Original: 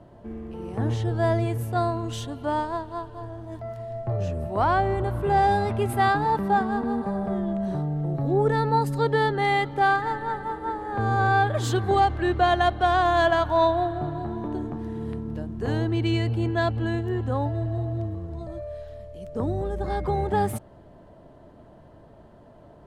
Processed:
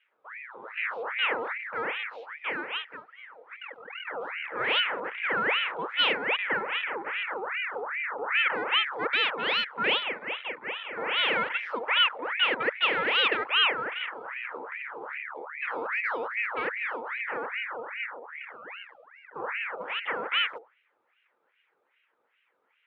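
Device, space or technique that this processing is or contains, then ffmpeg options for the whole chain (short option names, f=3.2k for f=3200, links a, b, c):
voice changer toy: -filter_complex "[0:a]equalizer=f=90:t=o:w=0.84:g=-4.5,afwtdn=0.0447,bandreject=f=60:t=h:w=6,bandreject=f=120:t=h:w=6,bandreject=f=180:t=h:w=6,bandreject=f=240:t=h:w=6,bandreject=f=300:t=h:w=6,bandreject=f=360:t=h:w=6,asettb=1/sr,asplit=3[a][b][c];[a]atrim=end=12.204[d];[b]atrim=start=12.2:end=12.63,asetpts=PTS-STARTPTS,afade=t=in:d=0.004:c=qsin,afade=t=out:st=0.426:d=0.004:c=qsin,lowpass=f=1.4k:p=1[e];[c]atrim=start=12.626[f];[d][e]acrossfade=d=0.004:c1=hsin:c2=qsin[g];[g][f]acrossfade=d=0.004:c1=qsin:c2=hsin,aeval=exprs='val(0)*sin(2*PI*1400*n/s+1400*0.6/2.5*sin(2*PI*2.5*n/s))':c=same,highpass=460,equalizer=f=480:t=q:w=4:g=6,equalizer=f=690:t=q:w=4:g=-8,equalizer=f=1.1k:t=q:w=4:g=-5,equalizer=f=1.6k:t=q:w=4:g=-3,equalizer=f=3.2k:t=q:w=4:g=4,lowpass=f=3.9k:w=0.5412,lowpass=f=3.9k:w=1.3066"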